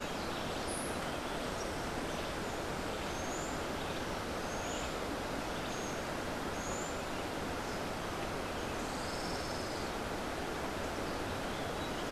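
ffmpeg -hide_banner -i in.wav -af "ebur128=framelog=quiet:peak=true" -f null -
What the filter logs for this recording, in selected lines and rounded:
Integrated loudness:
  I:         -38.2 LUFS
  Threshold: -48.2 LUFS
Loudness range:
  LRA:         0.3 LU
  Threshold: -58.3 LUFS
  LRA low:   -38.4 LUFS
  LRA high:  -38.1 LUFS
True peak:
  Peak:      -25.0 dBFS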